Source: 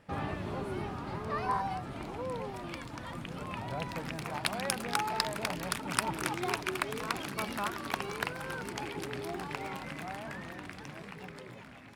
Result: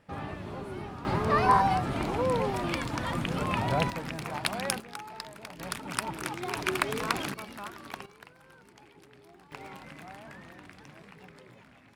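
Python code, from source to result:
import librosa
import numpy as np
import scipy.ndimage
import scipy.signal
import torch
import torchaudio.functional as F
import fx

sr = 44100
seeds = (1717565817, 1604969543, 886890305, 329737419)

y = fx.gain(x, sr, db=fx.steps((0.0, -2.0), (1.05, 10.0), (3.9, 2.0), (4.8, -10.0), (5.59, -1.5), (6.56, 5.0), (7.34, -6.5), (8.06, -17.0), (9.52, -5.5)))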